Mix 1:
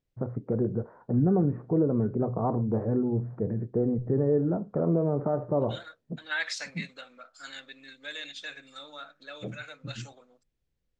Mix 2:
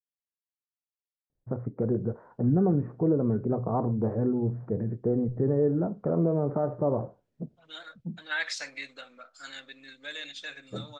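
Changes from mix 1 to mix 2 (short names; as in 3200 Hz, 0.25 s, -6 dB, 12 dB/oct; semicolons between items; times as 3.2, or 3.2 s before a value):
first voice: entry +1.30 s; second voice: entry +2.00 s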